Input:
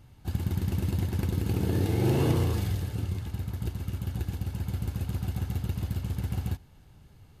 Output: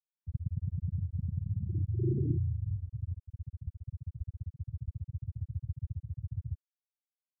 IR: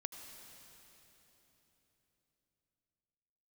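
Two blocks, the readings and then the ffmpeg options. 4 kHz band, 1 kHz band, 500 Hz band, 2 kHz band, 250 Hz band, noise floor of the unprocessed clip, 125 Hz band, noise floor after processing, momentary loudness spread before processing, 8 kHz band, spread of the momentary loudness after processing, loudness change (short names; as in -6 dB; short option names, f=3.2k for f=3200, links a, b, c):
under -40 dB, under -40 dB, -12.0 dB, under -40 dB, -10.5 dB, -55 dBFS, -5.5 dB, under -85 dBFS, 9 LU, under -35 dB, 12 LU, -6.5 dB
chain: -af "aecho=1:1:448|896|1344|1792:0.1|0.048|0.023|0.0111,afftfilt=real='re*gte(hypot(re,im),0.316)':imag='im*gte(hypot(re,im),0.316)':win_size=1024:overlap=0.75,volume=-3.5dB"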